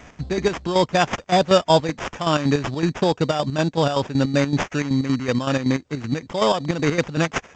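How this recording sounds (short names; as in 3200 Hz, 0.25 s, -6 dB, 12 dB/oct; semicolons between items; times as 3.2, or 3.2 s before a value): aliases and images of a low sample rate 4200 Hz, jitter 0%; chopped level 5.3 Hz, depth 60%, duty 55%; G.722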